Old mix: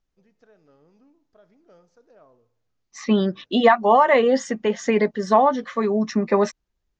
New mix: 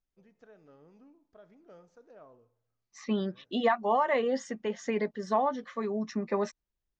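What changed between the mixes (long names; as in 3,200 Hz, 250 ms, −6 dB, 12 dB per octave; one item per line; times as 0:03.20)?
first voice: add parametric band 5,000 Hz −6.5 dB 0.63 octaves
second voice −11.0 dB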